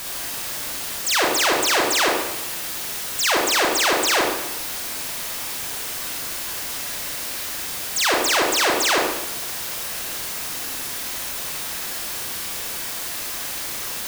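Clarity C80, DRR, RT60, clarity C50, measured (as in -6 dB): 4.0 dB, -2.5 dB, 0.90 s, 1.0 dB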